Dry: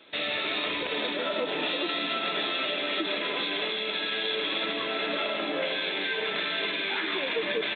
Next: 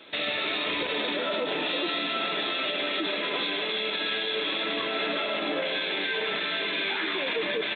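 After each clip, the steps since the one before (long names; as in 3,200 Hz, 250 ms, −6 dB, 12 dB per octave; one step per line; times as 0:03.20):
brickwall limiter −25 dBFS, peak gain reduction 8 dB
level +5 dB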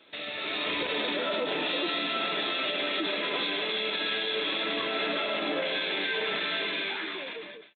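fade-out on the ending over 1.17 s
automatic gain control gain up to 7.5 dB
level −8.5 dB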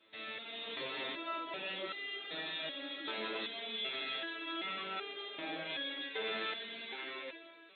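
delay that swaps between a low-pass and a high-pass 292 ms, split 820 Hz, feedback 67%, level −13 dB
step-sequenced resonator 2.6 Hz 110–400 Hz
level +1 dB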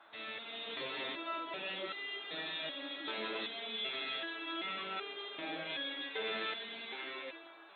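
noise in a band 580–1,600 Hz −61 dBFS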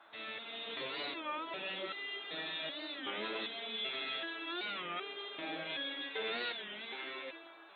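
wow of a warped record 33 1/3 rpm, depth 160 cents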